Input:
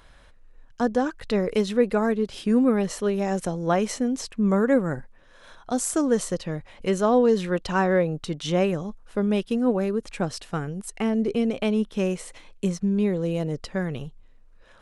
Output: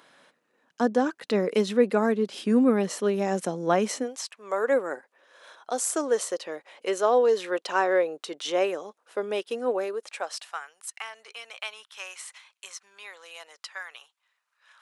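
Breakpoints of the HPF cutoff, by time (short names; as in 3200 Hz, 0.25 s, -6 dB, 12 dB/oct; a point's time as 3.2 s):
HPF 24 dB/oct
3.95 s 200 Hz
4.22 s 810 Hz
4.72 s 380 Hz
9.78 s 380 Hz
10.74 s 1000 Hz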